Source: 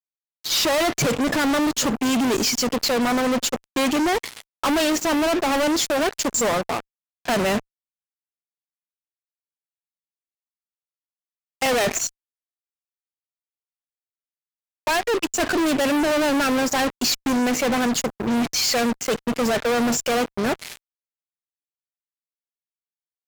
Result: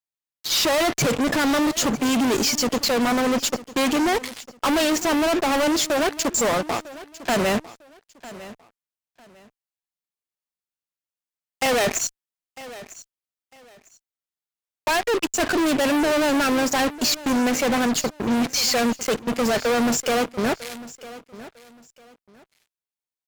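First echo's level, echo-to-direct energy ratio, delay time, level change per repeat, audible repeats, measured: -17.5 dB, -17.5 dB, 0.951 s, -12.0 dB, 2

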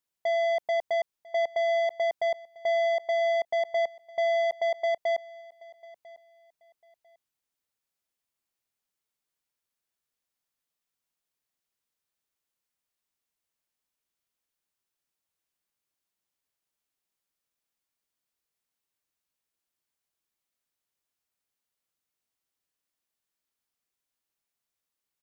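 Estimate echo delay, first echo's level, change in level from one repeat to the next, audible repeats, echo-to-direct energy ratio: 0.997 s, -22.0 dB, -12.0 dB, 2, -21.5 dB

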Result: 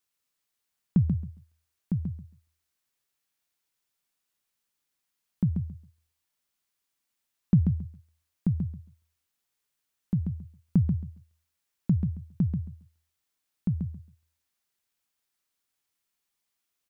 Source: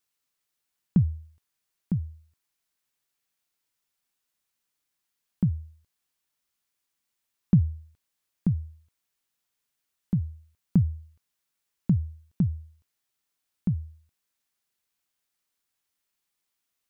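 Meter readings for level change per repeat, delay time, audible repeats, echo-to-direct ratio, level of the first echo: -15.0 dB, 0.136 s, 2, -6.0 dB, -6.0 dB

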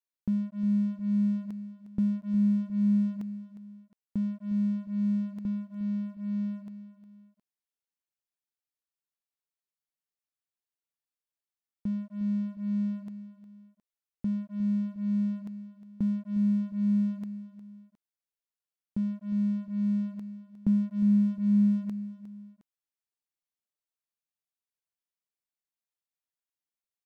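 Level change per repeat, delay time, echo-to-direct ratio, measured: -7.5 dB, 0.358 s, -13.5 dB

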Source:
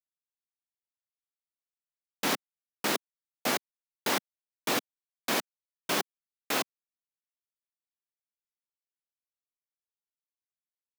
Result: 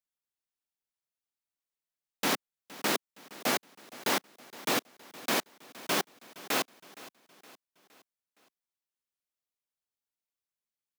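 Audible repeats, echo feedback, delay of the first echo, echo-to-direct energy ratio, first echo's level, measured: 3, 48%, 0.466 s, -18.0 dB, -19.0 dB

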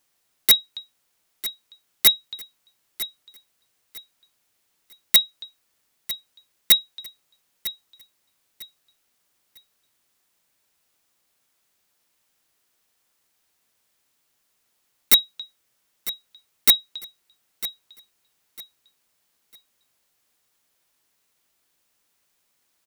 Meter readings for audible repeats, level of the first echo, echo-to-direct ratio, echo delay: 2, -15.0 dB, -14.5 dB, 0.951 s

